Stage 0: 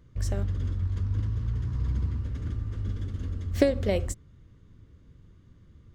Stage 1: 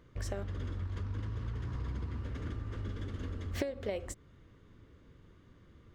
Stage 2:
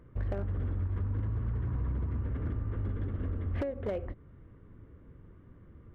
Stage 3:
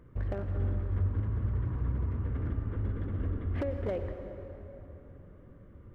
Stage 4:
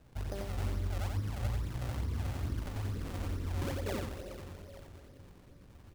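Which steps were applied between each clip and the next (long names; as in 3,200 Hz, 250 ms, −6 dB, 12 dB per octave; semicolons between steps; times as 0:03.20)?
bass and treble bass −11 dB, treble −7 dB; downward compressor 6 to 1, threshold −38 dBFS, peak gain reduction 19 dB; level +4.5 dB
Gaussian smoothing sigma 4 samples; low-shelf EQ 240 Hz +4 dB; hard clipping −29.5 dBFS, distortion −18 dB; level +2.5 dB
dense smooth reverb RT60 3.7 s, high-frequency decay 0.6×, pre-delay 80 ms, DRR 6.5 dB
sample-and-hold swept by an LFO 39×, swing 160% 2.3 Hz; single-tap delay 89 ms −4 dB; level −5 dB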